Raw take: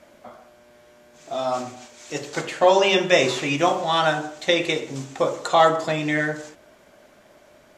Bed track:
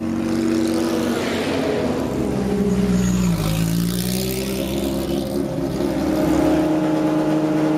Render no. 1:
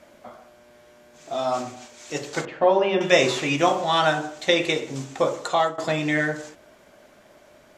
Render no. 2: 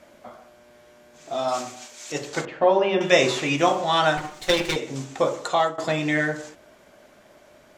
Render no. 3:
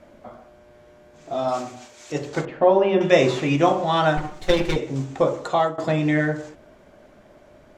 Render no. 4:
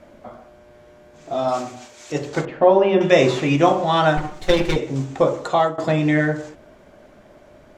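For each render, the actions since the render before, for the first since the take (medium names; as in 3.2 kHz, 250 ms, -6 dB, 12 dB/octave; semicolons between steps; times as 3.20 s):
2.45–3.01 s: tape spacing loss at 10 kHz 37 dB; 5.24–5.78 s: fade out equal-power, to -19.5 dB
1.48–2.12 s: tilt EQ +2 dB/octave; 4.17–4.76 s: comb filter that takes the minimum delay 5.5 ms
tilt EQ -2.5 dB/octave; hum notches 60/120/180/240 Hz
trim +2.5 dB; peak limiter -2 dBFS, peak gain reduction 1.5 dB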